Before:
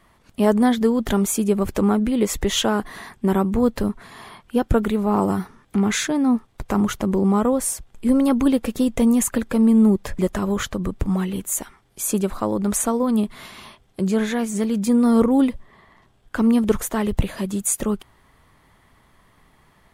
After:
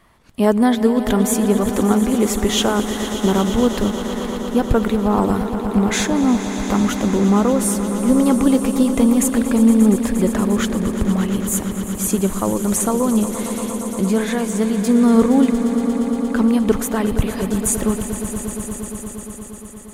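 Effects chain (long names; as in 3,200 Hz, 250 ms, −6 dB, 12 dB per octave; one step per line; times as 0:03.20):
echo that builds up and dies away 117 ms, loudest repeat 5, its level −13.5 dB
level +2 dB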